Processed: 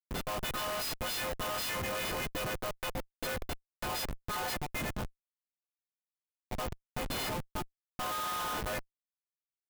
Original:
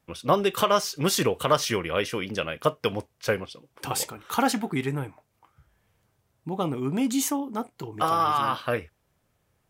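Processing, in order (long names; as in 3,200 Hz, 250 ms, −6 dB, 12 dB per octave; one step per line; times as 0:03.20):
every partial snapped to a pitch grid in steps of 3 semitones
linear-phase brick-wall band-pass 500–5,200 Hz
comparator with hysteresis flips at −30.5 dBFS
converter with an unsteady clock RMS 0.033 ms
level −7.5 dB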